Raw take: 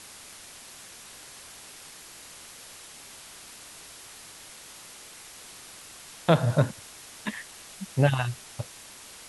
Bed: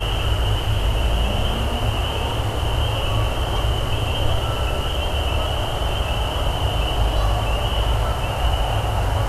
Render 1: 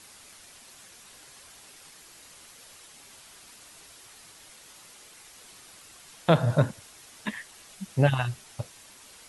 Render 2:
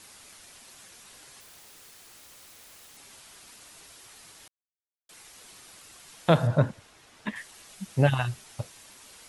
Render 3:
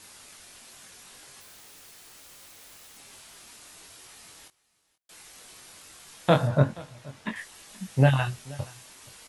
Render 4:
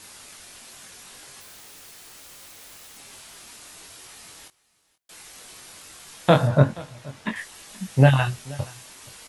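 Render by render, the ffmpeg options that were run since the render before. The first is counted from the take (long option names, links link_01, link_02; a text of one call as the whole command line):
ffmpeg -i in.wav -af "afftdn=noise_reduction=6:noise_floor=-47" out.wav
ffmpeg -i in.wav -filter_complex "[0:a]asettb=1/sr,asplit=3[link_01][link_02][link_03];[link_01]atrim=end=1.404[link_04];[link_02]atrim=start=1.4:end=2.97,asetpts=PTS-STARTPTS,afade=type=in:duration=0.004:curve=qsin,afade=type=out:start_time=1.566:duration=0.004:curve=qsin,aeval=exprs='(mod(178*val(0)+1,2)-1)/178':channel_layout=same[link_05];[link_03]atrim=start=2.966[link_06];[link_04][link_05]acrossfade=duration=0.004:curve1=hsin:curve2=qsin[link_07];[link_07][link_06]acrossfade=duration=0.004:curve1=qsin:curve2=hsin,asettb=1/sr,asplit=3[link_08][link_09][link_10];[link_08]atrim=end=6.474[link_11];[link_09]atrim=start=6.47:end=7.36,asetpts=PTS-STARTPTS,afade=type=in:duration=0.004:curve=qsin,afade=type=out:start_time=0.886:duration=0.004:curve=qsin,lowpass=frequency=2600:poles=1[link_12];[link_10]atrim=start=7.356[link_13];[link_11][link_12]acrossfade=duration=0.004:curve1=hsin:curve2=qsin[link_14];[link_14][link_13]acrossfade=duration=0.004:curve1=qsin:curve2=hsin,asplit=3[link_15][link_16][link_17];[link_15]atrim=end=4.48,asetpts=PTS-STARTPTS,afade=type=out:start_time=4.476:duration=0.004:curve=hsin[link_18];[link_16]atrim=start=4.48:end=5.09,asetpts=PTS-STARTPTS,volume=0[link_19];[link_17]atrim=start=5.09,asetpts=PTS-STARTPTS,afade=type=in:duration=0.004:curve=hsin[link_20];[link_18][link_19][link_20]concat=n=3:v=0:a=1" out.wav
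ffmpeg -i in.wav -filter_complex "[0:a]asplit=2[link_01][link_02];[link_02]adelay=22,volume=-5dB[link_03];[link_01][link_03]amix=inputs=2:normalize=0,aecho=1:1:478:0.0794" out.wav
ffmpeg -i in.wav -af "volume=4.5dB,alimiter=limit=-2dB:level=0:latency=1" out.wav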